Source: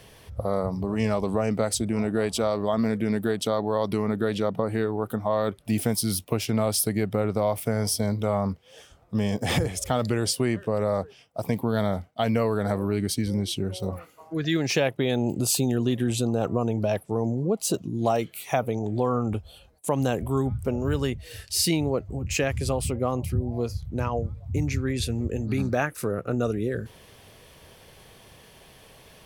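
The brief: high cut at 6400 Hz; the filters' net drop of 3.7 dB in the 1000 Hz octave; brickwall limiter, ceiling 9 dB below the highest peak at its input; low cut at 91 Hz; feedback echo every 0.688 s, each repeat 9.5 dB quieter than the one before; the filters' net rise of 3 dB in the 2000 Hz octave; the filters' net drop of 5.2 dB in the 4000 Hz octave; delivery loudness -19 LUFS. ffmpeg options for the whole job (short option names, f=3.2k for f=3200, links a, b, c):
-af "highpass=91,lowpass=6.4k,equalizer=f=1k:t=o:g=-7,equalizer=f=2k:t=o:g=8,equalizer=f=4k:t=o:g=-8,alimiter=limit=-18dB:level=0:latency=1,aecho=1:1:688|1376|2064|2752:0.335|0.111|0.0365|0.012,volume=10dB"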